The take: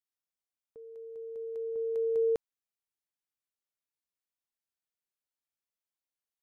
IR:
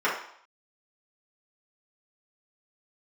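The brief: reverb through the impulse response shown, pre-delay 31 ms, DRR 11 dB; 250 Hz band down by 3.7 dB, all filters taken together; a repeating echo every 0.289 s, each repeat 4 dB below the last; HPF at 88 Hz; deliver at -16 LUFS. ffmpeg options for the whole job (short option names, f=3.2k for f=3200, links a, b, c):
-filter_complex "[0:a]highpass=88,equalizer=f=250:t=o:g=-6.5,aecho=1:1:289|578|867|1156|1445|1734|2023|2312|2601:0.631|0.398|0.25|0.158|0.0994|0.0626|0.0394|0.0249|0.0157,asplit=2[a][b];[1:a]atrim=start_sample=2205,adelay=31[c];[b][c]afir=irnorm=-1:irlink=0,volume=-26dB[d];[a][d]amix=inputs=2:normalize=0,volume=19.5dB"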